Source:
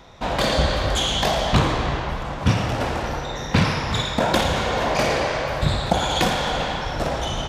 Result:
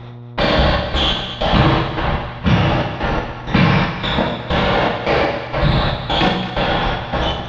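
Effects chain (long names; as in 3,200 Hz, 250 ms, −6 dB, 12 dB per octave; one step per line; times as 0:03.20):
gate pattern "x...xxxx..x" 160 BPM −60 dB
convolution reverb, pre-delay 3 ms, DRR −0.5 dB
in parallel at +3 dB: brickwall limiter −13.5 dBFS, peak gain reduction 10.5 dB
on the sum: low-pass filter 4,000 Hz 24 dB per octave
parametric band 180 Hz +3.5 dB 0.43 octaves
hum removal 93.04 Hz, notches 40
on a send: echo with a time of its own for lows and highs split 940 Hz, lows 131 ms, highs 221 ms, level −10.5 dB
on the sum: hum with harmonics 120 Hz, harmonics 12, −32 dBFS −9 dB per octave
level −2 dB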